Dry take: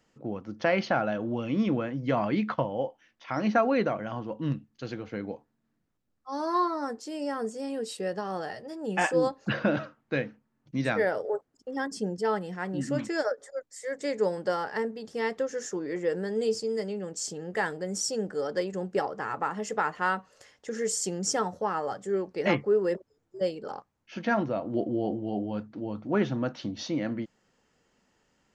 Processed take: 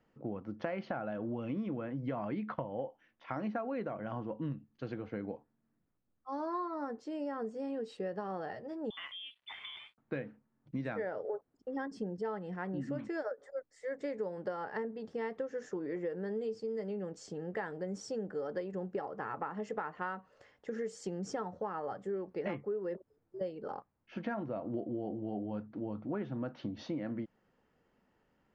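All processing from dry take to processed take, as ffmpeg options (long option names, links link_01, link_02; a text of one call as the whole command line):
ffmpeg -i in.wav -filter_complex "[0:a]asettb=1/sr,asplit=3[link_01][link_02][link_03];[link_01]atrim=end=8.904[link_04];[link_02]atrim=start=8.9:end=9.98,asetpts=PTS-STARTPTS,afade=type=in:duration=0.004:curve=qsin,afade=type=out:start_time=1.076:duration=0.004:curve=qsin,lowpass=frequency=3100:width_type=q:width=0.5098,lowpass=frequency=3100:width_type=q:width=0.6013,lowpass=frequency=3100:width_type=q:width=0.9,lowpass=frequency=3100:width_type=q:width=2.563,afreqshift=-3700,acompressor=threshold=-36dB:ratio=3:attack=3.2:release=140:knee=1:detection=peak,aeval=exprs='sgn(val(0))*max(abs(val(0))-0.00141,0)':channel_layout=same[link_05];[link_03]atrim=start=9.976[link_06];[link_04][link_05]acrossfade=duration=0.004:curve1=hsin:curve2=qsin[link_07];[link_07][link_06]acrossfade=duration=0.004:curve1=qsin:curve2=hsin,lowpass=frequency=3200:poles=1,aemphasis=mode=reproduction:type=75fm,acompressor=threshold=-31dB:ratio=6,volume=-3dB" out.wav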